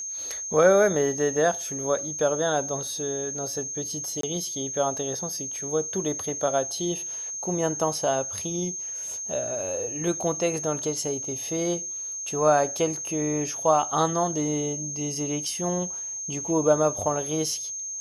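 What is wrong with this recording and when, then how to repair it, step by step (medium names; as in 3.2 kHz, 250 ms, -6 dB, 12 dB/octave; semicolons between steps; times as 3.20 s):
whine 6.4 kHz -31 dBFS
4.21–4.23 s: dropout 23 ms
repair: band-stop 6.4 kHz, Q 30; interpolate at 4.21 s, 23 ms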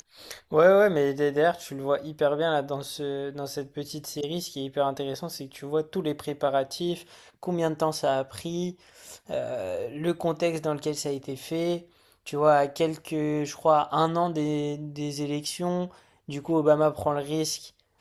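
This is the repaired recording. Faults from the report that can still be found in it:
nothing left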